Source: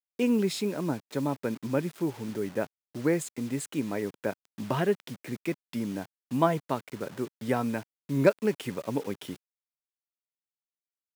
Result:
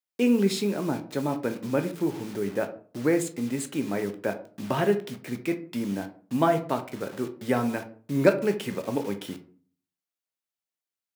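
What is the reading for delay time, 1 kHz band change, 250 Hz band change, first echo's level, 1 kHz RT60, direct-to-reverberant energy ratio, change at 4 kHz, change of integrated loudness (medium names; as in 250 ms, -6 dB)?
no echo, +2.5 dB, +3.0 dB, no echo, 0.40 s, 7.0 dB, +3.0 dB, +2.5 dB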